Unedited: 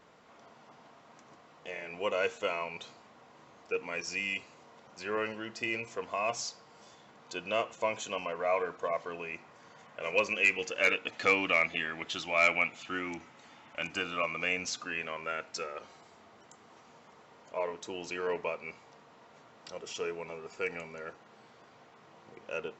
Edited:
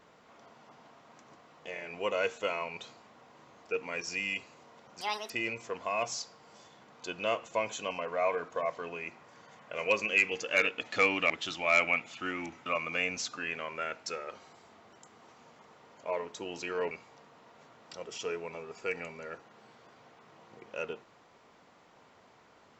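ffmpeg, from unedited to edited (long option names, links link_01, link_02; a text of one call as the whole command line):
ffmpeg -i in.wav -filter_complex "[0:a]asplit=6[link_01][link_02][link_03][link_04][link_05][link_06];[link_01]atrim=end=5.014[link_07];[link_02]atrim=start=5.01:end=5.57,asetpts=PTS-STARTPTS,asetrate=85554,aresample=44100[link_08];[link_03]atrim=start=5.566:end=11.572[link_09];[link_04]atrim=start=11.978:end=13.342[link_10];[link_05]atrim=start=14.138:end=18.392[link_11];[link_06]atrim=start=18.658[link_12];[link_07][link_08]acrossfade=duration=0.004:curve1=hsin:curve2=hsin[link_13];[link_13][link_09]acrossfade=duration=0.004:curve1=hsin:curve2=hsin[link_14];[link_14][link_10]acrossfade=duration=0.004:curve1=hsin:curve2=hsin[link_15];[link_15][link_11]acrossfade=duration=0.004:curve1=hsin:curve2=hsin[link_16];[link_16][link_12]acrossfade=duration=0.004:curve1=hsin:curve2=hsin" out.wav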